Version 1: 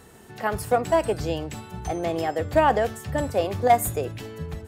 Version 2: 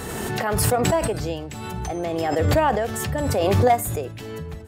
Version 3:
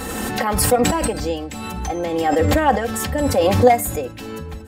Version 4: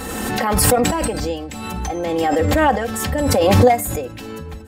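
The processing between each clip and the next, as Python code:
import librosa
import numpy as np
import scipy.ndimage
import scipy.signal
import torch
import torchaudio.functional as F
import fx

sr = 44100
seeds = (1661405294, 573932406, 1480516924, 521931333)

y1 = fx.pre_swell(x, sr, db_per_s=21.0)
y1 = y1 * librosa.db_to_amplitude(-1.5)
y2 = y1 + 0.7 * np.pad(y1, (int(3.8 * sr / 1000.0), 0))[:len(y1)]
y2 = y2 * librosa.db_to_amplitude(2.5)
y3 = fx.pre_swell(y2, sr, db_per_s=24.0)
y3 = y3 * librosa.db_to_amplitude(-1.0)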